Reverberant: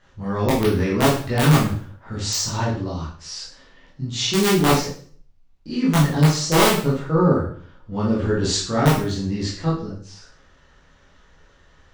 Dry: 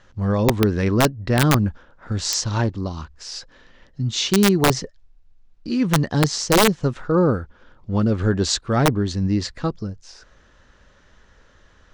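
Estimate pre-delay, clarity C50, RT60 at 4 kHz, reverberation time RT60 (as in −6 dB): 13 ms, 4.0 dB, 0.45 s, 0.50 s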